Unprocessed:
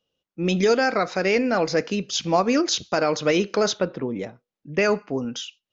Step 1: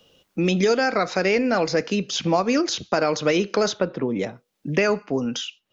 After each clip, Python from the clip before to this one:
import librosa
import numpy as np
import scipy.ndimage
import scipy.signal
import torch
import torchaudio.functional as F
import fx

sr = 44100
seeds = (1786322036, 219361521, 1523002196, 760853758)

y = fx.band_squash(x, sr, depth_pct=70)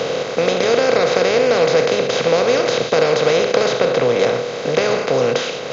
y = fx.bin_compress(x, sr, power=0.2)
y = fx.graphic_eq_31(y, sr, hz=(125, 200, 315, 500, 4000), db=(8, -6, -8, 12, 5))
y = F.gain(torch.from_numpy(y), -6.5).numpy()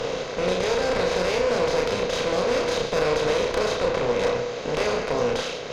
y = fx.tube_stage(x, sr, drive_db=14.0, bias=0.65)
y = fx.doubler(y, sr, ms=33.0, db=-3.0)
y = F.gain(torch.from_numpy(y), -5.0).numpy()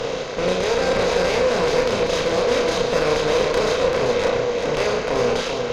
y = x + 10.0 ** (-5.0 / 20.0) * np.pad(x, (int(388 * sr / 1000.0), 0))[:len(x)]
y = F.gain(torch.from_numpy(y), 2.5).numpy()